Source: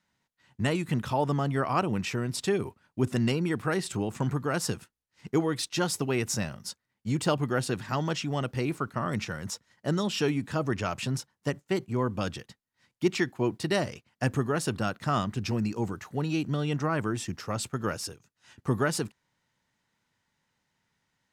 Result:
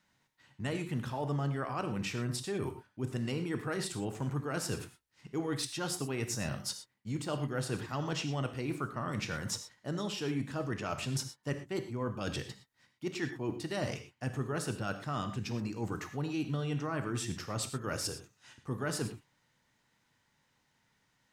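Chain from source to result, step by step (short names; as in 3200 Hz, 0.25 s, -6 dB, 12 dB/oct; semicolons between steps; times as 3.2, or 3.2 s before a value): reverse; compressor 10:1, threshold -35 dBFS, peak gain reduction 16.5 dB; reverse; non-linear reverb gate 0.14 s flat, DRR 7 dB; gain +2.5 dB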